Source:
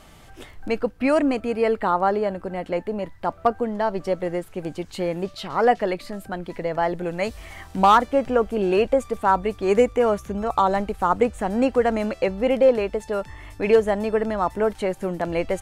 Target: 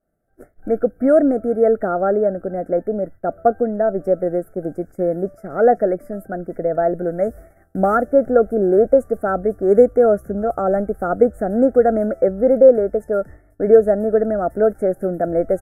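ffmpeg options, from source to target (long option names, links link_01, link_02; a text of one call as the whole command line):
ffmpeg -i in.wav -af "firequalizer=gain_entry='entry(110,0);entry(200,5);entry(680,9);entry(980,-23);entry(1400,5);entry(2200,-17);entry(4100,-23);entry(11000,1)':delay=0.05:min_phase=1,afftfilt=real='re*(1-between(b*sr/4096,2300,4800))':imag='im*(1-between(b*sr/4096,2300,4800))':win_size=4096:overlap=0.75,agate=range=-33dB:threshold=-30dB:ratio=3:detection=peak,volume=-1dB" out.wav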